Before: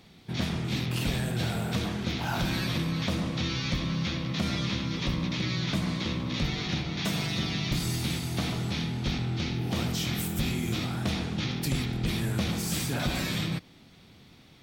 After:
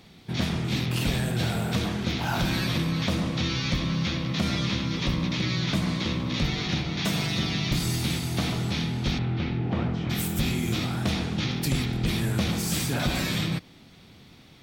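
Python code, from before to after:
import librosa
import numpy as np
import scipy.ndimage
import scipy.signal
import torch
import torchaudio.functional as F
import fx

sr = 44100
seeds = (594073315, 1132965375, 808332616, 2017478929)

y = fx.lowpass(x, sr, hz=fx.line((9.18, 3100.0), (10.09, 1400.0)), slope=12, at=(9.18, 10.09), fade=0.02)
y = y * librosa.db_to_amplitude(3.0)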